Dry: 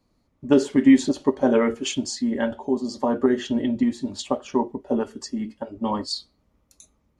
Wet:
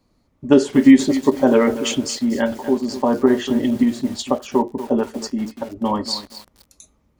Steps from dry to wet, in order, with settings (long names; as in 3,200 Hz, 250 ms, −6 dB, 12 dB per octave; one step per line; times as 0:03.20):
feedback echo at a low word length 239 ms, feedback 35%, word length 6 bits, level −12 dB
level +4.5 dB